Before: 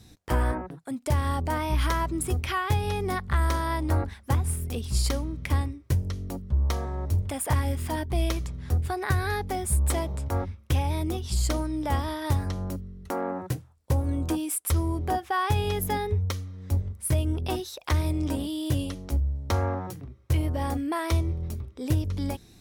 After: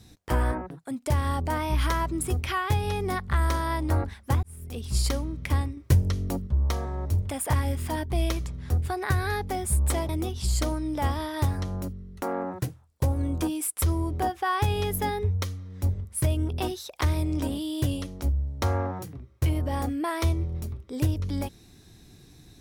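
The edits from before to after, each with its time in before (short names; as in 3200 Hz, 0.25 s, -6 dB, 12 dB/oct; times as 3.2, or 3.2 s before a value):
4.43–4.95 fade in
5.77–6.47 gain +5 dB
10.09–10.97 cut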